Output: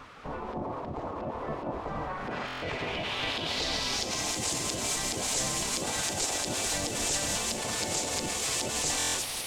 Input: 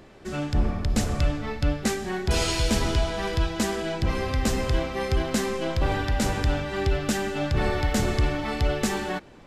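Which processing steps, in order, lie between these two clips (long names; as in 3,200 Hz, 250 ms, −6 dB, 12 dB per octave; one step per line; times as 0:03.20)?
lower of the sound and its delayed copy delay 5.6 ms
bit-depth reduction 6 bits, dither triangular
on a send at −17 dB: convolution reverb RT60 0.65 s, pre-delay 124 ms
on the sum: brickwall limiter −22.5 dBFS, peak gain reduction 10.5 dB
parametric band 1,500 Hz −9 dB 1.1 octaves
in parallel at 0 dB: compressor whose output falls as the input rises −34 dBFS
on the sum: low-pass filter sweep 1,000 Hz → 7,500 Hz, 0:01.83–0:04.39
gate on every frequency bin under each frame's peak −10 dB weak
buffer that repeats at 0:02.46/0:08.98, samples 1,024, times 6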